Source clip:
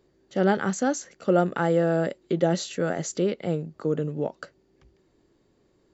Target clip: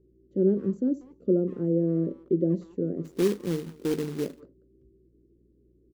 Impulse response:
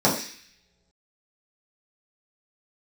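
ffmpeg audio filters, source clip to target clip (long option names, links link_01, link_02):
-filter_complex "[0:a]firequalizer=gain_entry='entry(130,0);entry(380,6);entry(790,-29)':delay=0.05:min_phase=1,asplit=2[link_01][link_02];[link_02]adelay=190,highpass=300,lowpass=3400,asoftclip=type=hard:threshold=-26dB,volume=-20dB[link_03];[link_01][link_03]amix=inputs=2:normalize=0,asplit=2[link_04][link_05];[1:a]atrim=start_sample=2205,afade=type=out:start_time=0.14:duration=0.01,atrim=end_sample=6615,lowpass=1300[link_06];[link_05][link_06]afir=irnorm=-1:irlink=0,volume=-33dB[link_07];[link_04][link_07]amix=inputs=2:normalize=0,aeval=exprs='val(0)+0.001*(sin(2*PI*60*n/s)+sin(2*PI*2*60*n/s)/2+sin(2*PI*3*60*n/s)/3+sin(2*PI*4*60*n/s)/4+sin(2*PI*5*60*n/s)/5)':channel_layout=same,asplit=3[link_08][link_09][link_10];[link_08]afade=type=out:start_time=3.04:duration=0.02[link_11];[link_09]acrusher=bits=3:mode=log:mix=0:aa=0.000001,afade=type=in:start_time=3.04:duration=0.02,afade=type=out:start_time=4.39:duration=0.02[link_12];[link_10]afade=type=in:start_time=4.39:duration=0.02[link_13];[link_11][link_12][link_13]amix=inputs=3:normalize=0,volume=-4dB"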